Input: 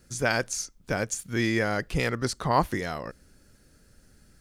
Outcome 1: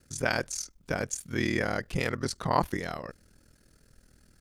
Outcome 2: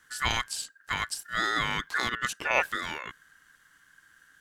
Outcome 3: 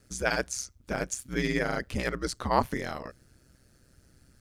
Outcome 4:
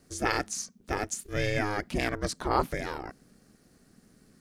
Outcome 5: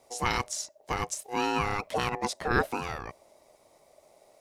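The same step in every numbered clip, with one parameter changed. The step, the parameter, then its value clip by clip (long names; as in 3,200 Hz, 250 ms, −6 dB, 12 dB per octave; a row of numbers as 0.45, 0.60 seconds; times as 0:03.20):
ring modulation, frequency: 20, 1,600, 65, 210, 610 Hertz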